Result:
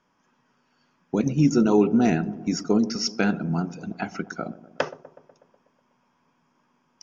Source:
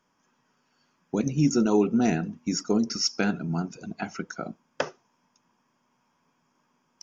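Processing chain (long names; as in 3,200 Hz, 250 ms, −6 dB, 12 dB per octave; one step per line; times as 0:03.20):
Bessel low-pass filter 4,600 Hz, order 2
on a send: delay with a low-pass on its return 123 ms, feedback 62%, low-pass 810 Hz, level −15 dB
on the sum: level +3 dB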